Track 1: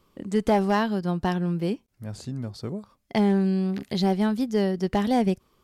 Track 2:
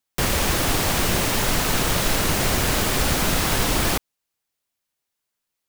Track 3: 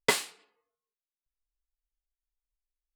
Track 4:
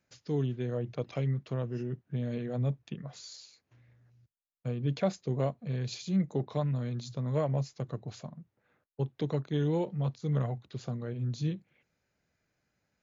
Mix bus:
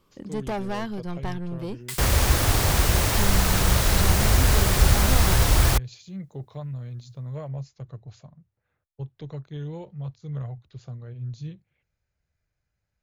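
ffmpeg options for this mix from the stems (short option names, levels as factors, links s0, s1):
-filter_complex "[0:a]asoftclip=type=tanh:threshold=0.0668,volume=0.841[s0];[1:a]highpass=52,equalizer=f=2800:t=o:w=0.77:g=-2.5,adelay=1800,volume=0.841[s1];[2:a]highpass=1200,aemphasis=mode=production:type=50fm,adelay=1800,volume=0.2[s2];[3:a]volume=0.501[s3];[s0][s1][s2][s3]amix=inputs=4:normalize=0,asubboost=boost=9.5:cutoff=75"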